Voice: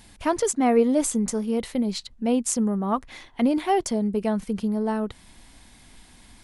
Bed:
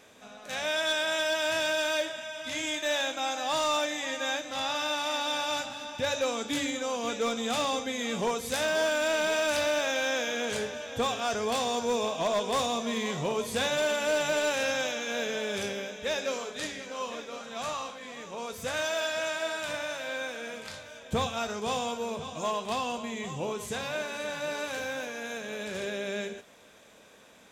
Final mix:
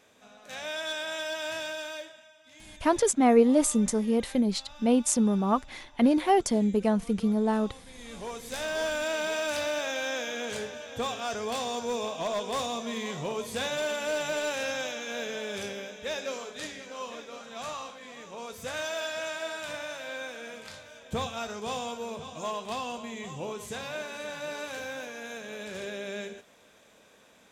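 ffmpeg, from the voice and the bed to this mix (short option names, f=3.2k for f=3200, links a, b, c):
-filter_complex "[0:a]adelay=2600,volume=-0.5dB[a];[1:a]volume=11.5dB,afade=t=out:st=1.49:d=0.89:silence=0.188365,afade=t=in:st=7.87:d=0.98:silence=0.141254[b];[a][b]amix=inputs=2:normalize=0"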